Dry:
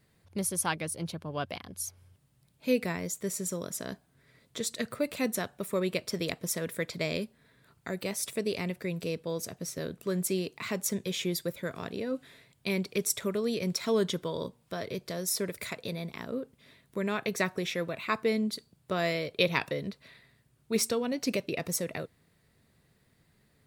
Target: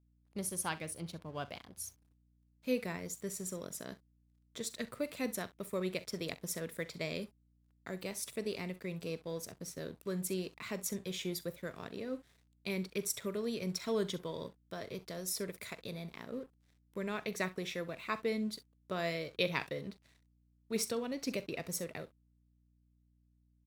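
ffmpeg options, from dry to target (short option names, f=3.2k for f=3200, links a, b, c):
-af "aecho=1:1:43|65:0.15|0.133,aeval=exprs='sgn(val(0))*max(abs(val(0))-0.00211,0)':c=same,aeval=exprs='val(0)+0.000708*(sin(2*PI*60*n/s)+sin(2*PI*2*60*n/s)/2+sin(2*PI*3*60*n/s)/3+sin(2*PI*4*60*n/s)/4+sin(2*PI*5*60*n/s)/5)':c=same,volume=-6.5dB"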